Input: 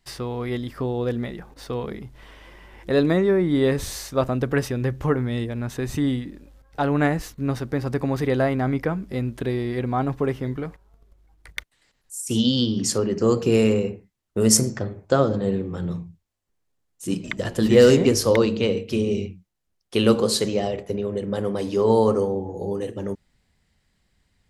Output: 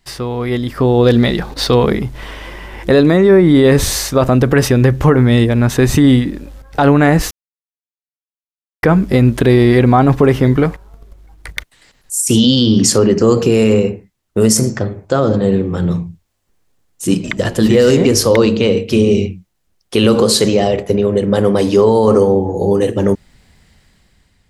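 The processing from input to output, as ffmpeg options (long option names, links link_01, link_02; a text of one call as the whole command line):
ffmpeg -i in.wav -filter_complex "[0:a]asettb=1/sr,asplit=3[link_01][link_02][link_03];[link_01]atrim=end=1.044[link_04];[link_02]atrim=start=1.04:end=1.75,asetpts=PTS-STARTPTS,afade=type=in:duration=0.004:curve=qsin,afade=type=out:start_time=0.706:duration=0.004:curve=qsin,equalizer=frequency=4100:width_type=o:width=0.72:gain=9[link_05];[link_03]atrim=start=1.746[link_06];[link_04][link_05]acrossfade=duration=0.004:curve1=hsin:curve2=qsin[link_07];[link_07][link_06]acrossfade=duration=0.004:curve1=qsin:curve2=hsin,asplit=3[link_08][link_09][link_10];[link_08]atrim=end=7.31,asetpts=PTS-STARTPTS,afade=type=out:start_time=7.306:duration=0.004:curve=hsin[link_11];[link_09]atrim=start=7.31:end=8.83,asetpts=PTS-STARTPTS,volume=0[link_12];[link_10]atrim=start=8.83,asetpts=PTS-STARTPTS,afade=type=in:duration=0.004:curve=hsin[link_13];[link_11][link_12][link_13]concat=n=3:v=0:a=1,dynaudnorm=framelen=280:gausssize=7:maxgain=11.5dB,alimiter=level_in=9dB:limit=-1dB:release=50:level=0:latency=1,volume=-1dB" out.wav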